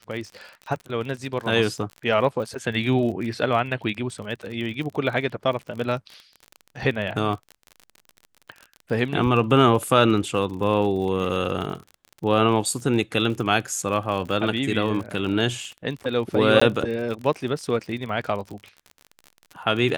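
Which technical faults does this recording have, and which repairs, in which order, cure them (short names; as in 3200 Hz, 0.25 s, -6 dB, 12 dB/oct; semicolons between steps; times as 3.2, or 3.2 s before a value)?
crackle 39/s -31 dBFS
16.6–16.61 gap 15 ms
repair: de-click; interpolate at 16.6, 15 ms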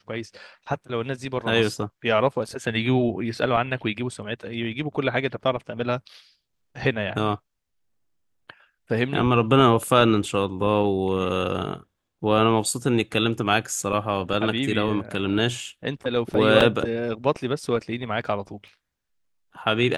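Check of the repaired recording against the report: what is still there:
none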